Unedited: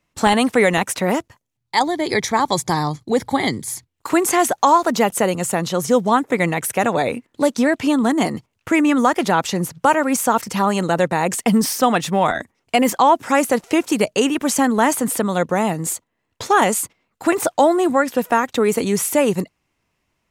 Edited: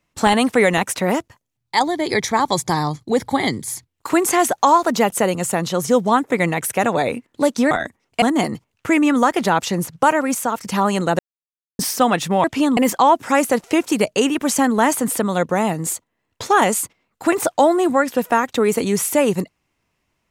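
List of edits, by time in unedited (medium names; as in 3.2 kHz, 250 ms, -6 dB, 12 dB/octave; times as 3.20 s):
7.71–8.04 s: swap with 12.26–12.77 s
9.96–10.45 s: fade out, to -7.5 dB
11.01–11.61 s: mute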